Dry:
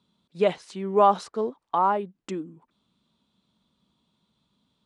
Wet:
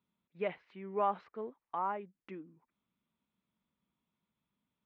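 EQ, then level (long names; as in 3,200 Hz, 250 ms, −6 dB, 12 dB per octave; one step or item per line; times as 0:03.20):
transistor ladder low-pass 2,600 Hz, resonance 50%
−5.0 dB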